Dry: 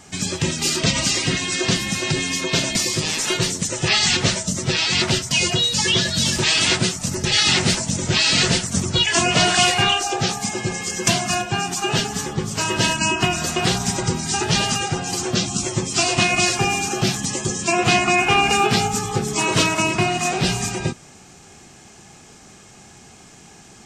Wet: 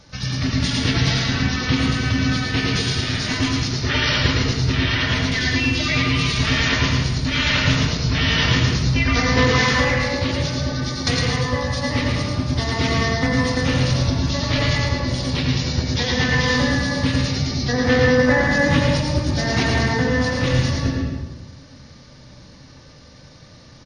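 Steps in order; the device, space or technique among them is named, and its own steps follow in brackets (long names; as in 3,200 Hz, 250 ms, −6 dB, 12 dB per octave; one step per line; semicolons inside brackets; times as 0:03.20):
monster voice (pitch shifter −6 semitones; low-shelf EQ 230 Hz +5 dB; single-tap delay 109 ms −6 dB; convolution reverb RT60 1.1 s, pre-delay 82 ms, DRR 0.5 dB)
level −5 dB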